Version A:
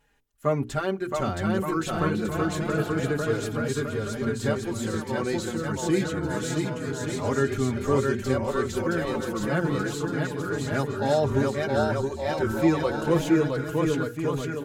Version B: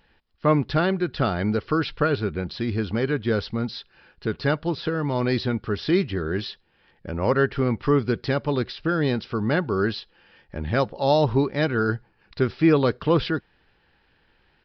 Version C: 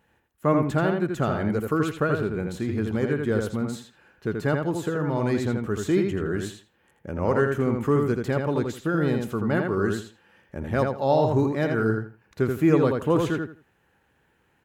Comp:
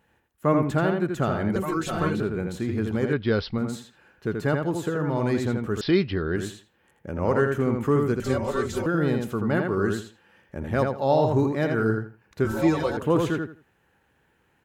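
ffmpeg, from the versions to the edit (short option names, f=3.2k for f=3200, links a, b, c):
-filter_complex "[0:a]asplit=3[a][b][c];[1:a]asplit=2[d][e];[2:a]asplit=6[f][g][h][i][j][k];[f]atrim=end=1.562[l];[a]atrim=start=1.558:end=2.202[m];[g]atrim=start=2.198:end=3.132[n];[d]atrim=start=3.128:end=3.582[o];[h]atrim=start=3.578:end=5.812[p];[e]atrim=start=5.808:end=6.362[q];[i]atrim=start=6.358:end=8.202[r];[b]atrim=start=8.198:end=8.862[s];[j]atrim=start=8.858:end=12.452[t];[c]atrim=start=12.448:end=12.972[u];[k]atrim=start=12.968[v];[l][m]acrossfade=d=0.004:c1=hsin:c2=hsin[w];[w][n]acrossfade=d=0.004:c1=hsin:c2=hsin[x];[x][o]acrossfade=d=0.004:c1=hsin:c2=hsin[y];[y][p]acrossfade=d=0.004:c1=hsin:c2=hsin[z];[z][q]acrossfade=d=0.004:c1=hsin:c2=hsin[aa];[aa][r]acrossfade=d=0.004:c1=hsin:c2=hsin[ab];[ab][s]acrossfade=d=0.004:c1=hsin:c2=hsin[ac];[ac][t]acrossfade=d=0.004:c1=hsin:c2=hsin[ad];[ad][u]acrossfade=d=0.004:c1=hsin:c2=hsin[ae];[ae][v]acrossfade=d=0.004:c1=hsin:c2=hsin"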